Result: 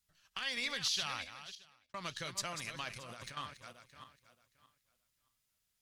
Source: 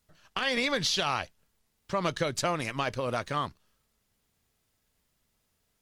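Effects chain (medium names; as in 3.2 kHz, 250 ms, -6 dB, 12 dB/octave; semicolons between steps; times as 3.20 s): backward echo that repeats 311 ms, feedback 43%, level -8 dB; amplifier tone stack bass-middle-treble 5-5-5; 1.15–1.94 s: fade out; 2.96–3.37 s: compressor with a negative ratio -50 dBFS, ratio -1; trim +1 dB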